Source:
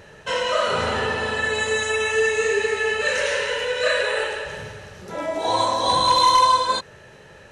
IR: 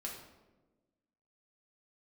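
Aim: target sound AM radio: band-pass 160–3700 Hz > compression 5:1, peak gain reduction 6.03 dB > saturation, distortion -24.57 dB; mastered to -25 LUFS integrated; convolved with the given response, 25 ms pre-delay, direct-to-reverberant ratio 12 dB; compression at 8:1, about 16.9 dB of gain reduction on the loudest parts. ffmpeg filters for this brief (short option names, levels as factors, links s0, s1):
-filter_complex "[0:a]acompressor=threshold=0.0282:ratio=8,asplit=2[s0][s1];[1:a]atrim=start_sample=2205,adelay=25[s2];[s1][s2]afir=irnorm=-1:irlink=0,volume=0.282[s3];[s0][s3]amix=inputs=2:normalize=0,highpass=160,lowpass=3700,acompressor=threshold=0.0178:ratio=5,asoftclip=threshold=0.0376,volume=5.01"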